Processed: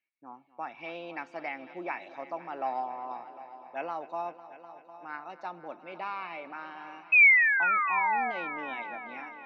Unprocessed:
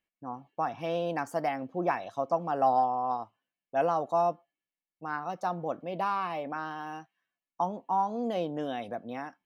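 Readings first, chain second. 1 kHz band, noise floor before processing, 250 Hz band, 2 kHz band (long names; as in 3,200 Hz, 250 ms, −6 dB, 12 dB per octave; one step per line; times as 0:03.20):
−3.5 dB, below −85 dBFS, −9.5 dB, +17.0 dB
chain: sound drawn into the spectrogram fall, 0:07.12–0:08.32, 700–2,600 Hz −22 dBFS
loudspeaker in its box 440–4,100 Hz, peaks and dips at 490 Hz −10 dB, 710 Hz −9 dB, 1,100 Hz −8 dB, 1,600 Hz −4 dB, 2,300 Hz +8 dB, 3,200 Hz −8 dB
echo machine with several playback heads 251 ms, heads all three, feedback 50%, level −18 dB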